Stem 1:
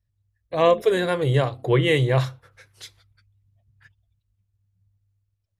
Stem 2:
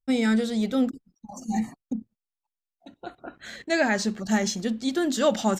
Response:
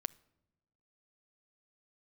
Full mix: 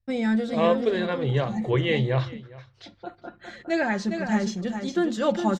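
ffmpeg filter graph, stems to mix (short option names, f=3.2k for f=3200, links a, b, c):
-filter_complex "[0:a]lowpass=f=5.1k:w=0.5412,lowpass=f=5.1k:w=1.3066,flanger=delay=0.2:depth=6.8:regen=-80:speed=1.9:shape=sinusoidal,volume=0dB,asplit=3[a][b][c];[b]volume=-20.5dB[d];[1:a]aemphasis=mode=reproduction:type=75fm,aecho=1:1:5.7:0.5,volume=-5.5dB,asplit=3[e][f][g];[f]volume=-5dB[h];[g]volume=-3.5dB[i];[c]apad=whole_len=246803[j];[e][j]sidechaincompress=threshold=-28dB:ratio=8:attack=16:release=390[k];[2:a]atrim=start_sample=2205[l];[h][l]afir=irnorm=-1:irlink=0[m];[d][i]amix=inputs=2:normalize=0,aecho=0:1:409:1[n];[a][k][m][n]amix=inputs=4:normalize=0"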